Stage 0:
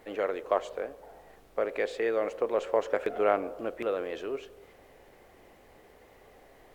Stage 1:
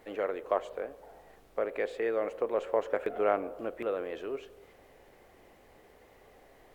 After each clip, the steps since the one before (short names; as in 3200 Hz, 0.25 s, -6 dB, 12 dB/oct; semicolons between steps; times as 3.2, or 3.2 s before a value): dynamic EQ 5400 Hz, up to -7 dB, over -54 dBFS, Q 0.86; gain -2 dB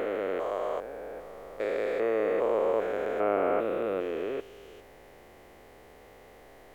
stepped spectrum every 0.4 s; gain +7 dB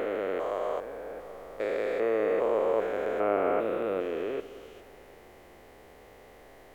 reverb RT60 3.3 s, pre-delay 3 ms, DRR 14.5 dB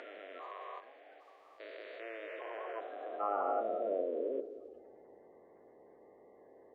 bin magnitudes rounded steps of 30 dB; de-hum 46.71 Hz, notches 35; band-pass sweep 1900 Hz -> 440 Hz, 2.41–4.32